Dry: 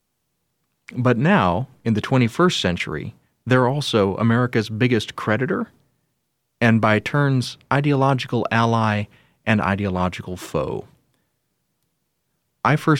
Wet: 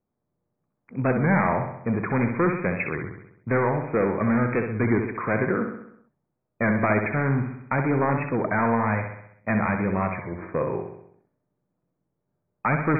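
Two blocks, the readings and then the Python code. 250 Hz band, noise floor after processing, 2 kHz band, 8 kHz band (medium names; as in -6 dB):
-4.0 dB, -80 dBFS, -4.0 dB, under -40 dB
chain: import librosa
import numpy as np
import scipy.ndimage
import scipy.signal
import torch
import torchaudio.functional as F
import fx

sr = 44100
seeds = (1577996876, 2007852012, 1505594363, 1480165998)

y = np.clip(x, -10.0 ** (-14.0 / 20.0), 10.0 ** (-14.0 / 20.0))
y = fx.low_shelf(y, sr, hz=76.0, db=-9.5)
y = fx.env_lowpass(y, sr, base_hz=810.0, full_db=-20.0)
y = fx.brickwall_lowpass(y, sr, high_hz=2500.0)
y = fx.echo_feedback(y, sr, ms=65, feedback_pct=55, wet_db=-6.5)
y = fx.record_warp(y, sr, rpm=33.33, depth_cents=100.0)
y = y * 10.0 ** (-2.5 / 20.0)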